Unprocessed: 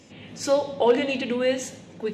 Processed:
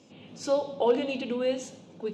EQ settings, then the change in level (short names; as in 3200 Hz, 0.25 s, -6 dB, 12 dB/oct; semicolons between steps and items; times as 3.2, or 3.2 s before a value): HPF 130 Hz 12 dB/oct; air absorption 55 m; bell 1900 Hz -11.5 dB 0.46 oct; -4.0 dB